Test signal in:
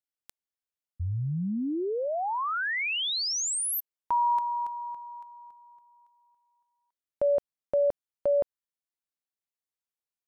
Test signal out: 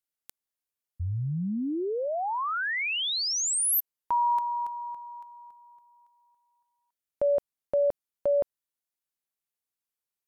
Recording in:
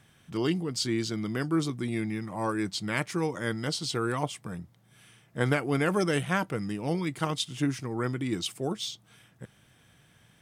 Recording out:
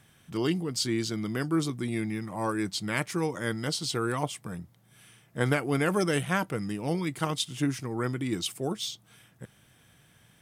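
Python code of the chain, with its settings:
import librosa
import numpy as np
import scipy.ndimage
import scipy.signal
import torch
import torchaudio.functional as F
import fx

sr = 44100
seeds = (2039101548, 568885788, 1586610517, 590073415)

y = fx.peak_eq(x, sr, hz=13000.0, db=6.0, octaves=0.9)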